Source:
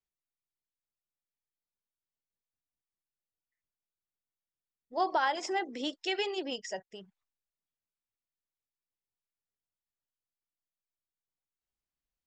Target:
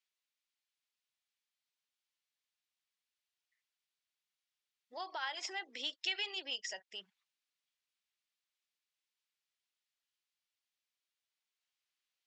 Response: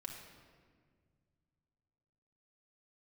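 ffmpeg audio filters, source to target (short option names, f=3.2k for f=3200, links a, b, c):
-af "acompressor=threshold=-45dB:ratio=2.5,bandpass=f=3.2k:t=q:w=1:csg=0,volume=10dB"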